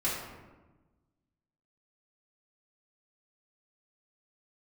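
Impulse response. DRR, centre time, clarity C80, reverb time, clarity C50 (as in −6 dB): −9.0 dB, 66 ms, 4.0 dB, 1.2 s, 1.0 dB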